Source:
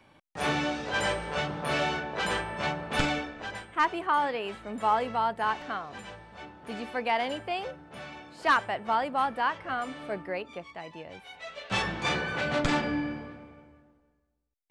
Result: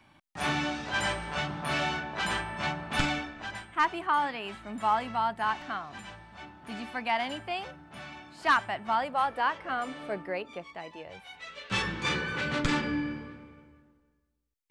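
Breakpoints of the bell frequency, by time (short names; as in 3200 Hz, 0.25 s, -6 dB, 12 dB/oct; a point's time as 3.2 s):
bell -13.5 dB 0.45 oct
8.92 s 480 Hz
9.74 s 90 Hz
10.77 s 90 Hz
11.44 s 690 Hz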